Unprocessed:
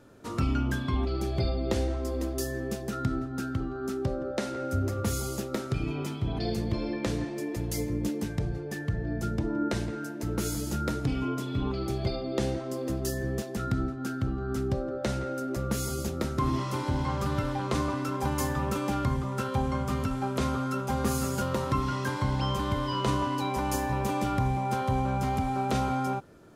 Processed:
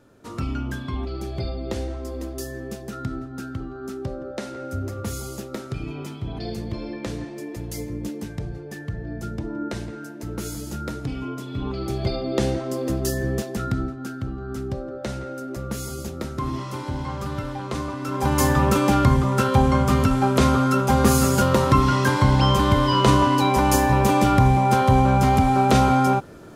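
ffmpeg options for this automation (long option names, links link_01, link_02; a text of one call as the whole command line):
ffmpeg -i in.wav -af "volume=17.5dB,afade=type=in:start_time=11.47:duration=0.82:silence=0.446684,afade=type=out:start_time=13.34:duration=0.79:silence=0.473151,afade=type=in:start_time=17.99:duration=0.51:silence=0.281838" out.wav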